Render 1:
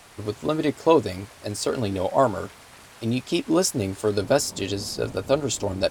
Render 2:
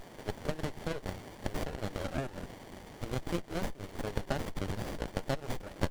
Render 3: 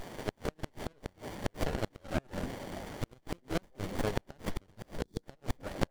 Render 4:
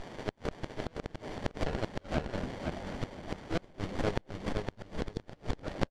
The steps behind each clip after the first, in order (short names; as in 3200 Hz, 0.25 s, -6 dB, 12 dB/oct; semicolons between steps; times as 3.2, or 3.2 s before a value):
HPF 1400 Hz 12 dB/oct; compressor 6:1, threshold -37 dBFS, peak gain reduction 15.5 dB; running maximum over 33 samples; gain +7 dB
delay with a stepping band-pass 0.291 s, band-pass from 240 Hz, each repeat 1.4 oct, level -10 dB; flipped gate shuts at -24 dBFS, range -32 dB; spectral gain 5.02–5.23, 490–3300 Hz -13 dB; gain +5 dB
LPF 5700 Hz 12 dB/oct; on a send: feedback echo 0.512 s, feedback 18%, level -4.5 dB